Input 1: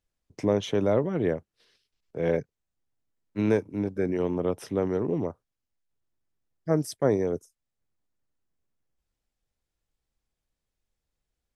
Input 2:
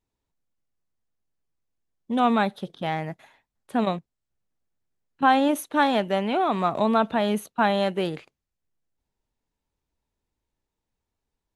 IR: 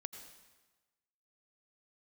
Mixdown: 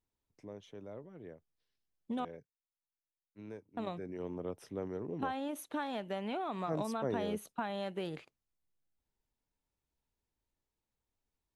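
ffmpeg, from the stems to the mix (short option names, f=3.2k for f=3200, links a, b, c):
-filter_complex "[0:a]volume=-13dB,afade=t=in:st=3.79:d=0.51:silence=0.281838[a];[1:a]acompressor=threshold=-27dB:ratio=10,volume=-7dB,asplit=3[b][c][d];[b]atrim=end=2.25,asetpts=PTS-STARTPTS,afade=t=out:st=2.246:d=0.004:c=hsin[e];[c]atrim=start=2.25:end=3.77,asetpts=PTS-STARTPTS,volume=0[f];[d]atrim=start=3.77,asetpts=PTS-STARTPTS,afade=t=in:d=0.004:c=hsin[g];[e][f][g]concat=n=3:v=0:a=1[h];[a][h]amix=inputs=2:normalize=0"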